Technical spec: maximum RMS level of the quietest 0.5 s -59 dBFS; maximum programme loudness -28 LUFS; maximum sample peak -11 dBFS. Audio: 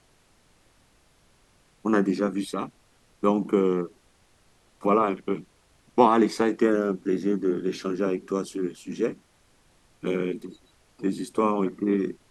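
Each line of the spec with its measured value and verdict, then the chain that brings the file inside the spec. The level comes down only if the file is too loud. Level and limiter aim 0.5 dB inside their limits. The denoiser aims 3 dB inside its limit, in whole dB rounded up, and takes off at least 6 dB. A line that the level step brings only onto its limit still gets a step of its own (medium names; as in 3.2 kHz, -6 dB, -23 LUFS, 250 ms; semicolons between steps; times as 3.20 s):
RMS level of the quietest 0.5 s -62 dBFS: pass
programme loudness -26.0 LUFS: fail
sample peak -4.5 dBFS: fail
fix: trim -2.5 dB; peak limiter -11.5 dBFS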